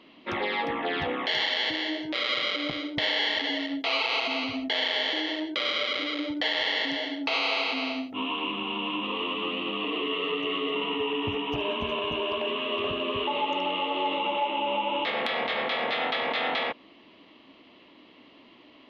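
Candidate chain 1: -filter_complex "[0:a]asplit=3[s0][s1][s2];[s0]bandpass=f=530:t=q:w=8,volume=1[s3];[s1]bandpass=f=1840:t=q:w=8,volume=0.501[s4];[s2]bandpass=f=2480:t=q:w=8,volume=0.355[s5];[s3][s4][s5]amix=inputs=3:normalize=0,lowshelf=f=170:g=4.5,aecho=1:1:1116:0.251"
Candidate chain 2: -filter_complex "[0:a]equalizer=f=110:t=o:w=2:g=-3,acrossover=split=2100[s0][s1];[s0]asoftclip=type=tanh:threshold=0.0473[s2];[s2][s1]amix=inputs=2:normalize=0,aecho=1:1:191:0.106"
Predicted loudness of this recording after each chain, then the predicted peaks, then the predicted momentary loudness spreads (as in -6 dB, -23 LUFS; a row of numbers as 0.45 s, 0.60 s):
-39.0 LUFS, -28.5 LUFS; -23.5 dBFS, -12.0 dBFS; 6 LU, 5 LU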